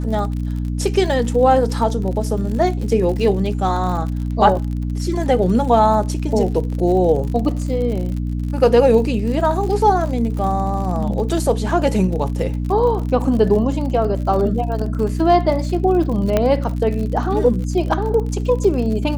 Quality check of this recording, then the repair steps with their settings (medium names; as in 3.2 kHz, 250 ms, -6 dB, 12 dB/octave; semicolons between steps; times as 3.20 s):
crackle 56 per s -26 dBFS
hum 60 Hz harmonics 5 -22 dBFS
16.37 s: pop -4 dBFS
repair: de-click; de-hum 60 Hz, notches 5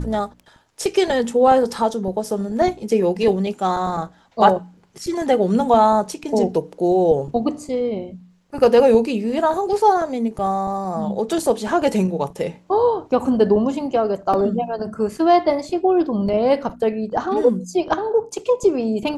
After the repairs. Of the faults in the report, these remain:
nothing left